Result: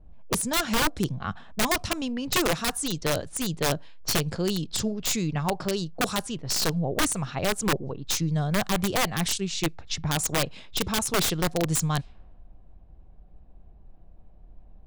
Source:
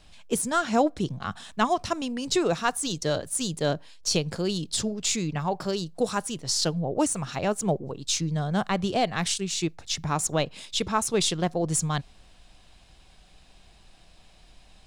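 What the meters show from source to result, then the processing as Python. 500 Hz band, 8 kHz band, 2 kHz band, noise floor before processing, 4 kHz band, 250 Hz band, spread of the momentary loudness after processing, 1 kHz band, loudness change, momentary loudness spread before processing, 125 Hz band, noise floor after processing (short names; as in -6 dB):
-2.0 dB, 0.0 dB, +4.0 dB, -55 dBFS, +1.0 dB, -0.5 dB, 5 LU, -2.0 dB, 0.0 dB, 6 LU, +1.5 dB, -50 dBFS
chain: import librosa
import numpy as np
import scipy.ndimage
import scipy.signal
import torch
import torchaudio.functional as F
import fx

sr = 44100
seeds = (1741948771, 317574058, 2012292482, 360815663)

y = fx.env_lowpass(x, sr, base_hz=510.0, full_db=-23.0)
y = (np.mod(10.0 ** (17.5 / 20.0) * y + 1.0, 2.0) - 1.0) / 10.0 ** (17.5 / 20.0)
y = fx.low_shelf(y, sr, hz=99.0, db=7.5)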